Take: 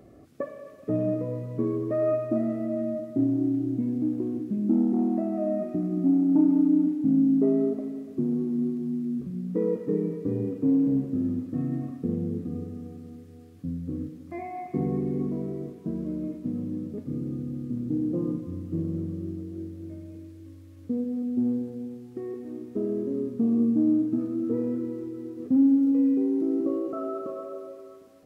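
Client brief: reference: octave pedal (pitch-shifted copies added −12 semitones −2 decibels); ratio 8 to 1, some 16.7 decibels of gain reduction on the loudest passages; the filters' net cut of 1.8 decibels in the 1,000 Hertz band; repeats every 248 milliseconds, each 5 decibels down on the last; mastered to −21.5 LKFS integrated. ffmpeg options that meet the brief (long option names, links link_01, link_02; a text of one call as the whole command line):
ffmpeg -i in.wav -filter_complex "[0:a]equalizer=frequency=1000:width_type=o:gain=-3,acompressor=threshold=-35dB:ratio=8,aecho=1:1:248|496|744|992|1240|1488|1736:0.562|0.315|0.176|0.0988|0.0553|0.031|0.0173,asplit=2[link_01][link_02];[link_02]asetrate=22050,aresample=44100,atempo=2,volume=-2dB[link_03];[link_01][link_03]amix=inputs=2:normalize=0,volume=13.5dB" out.wav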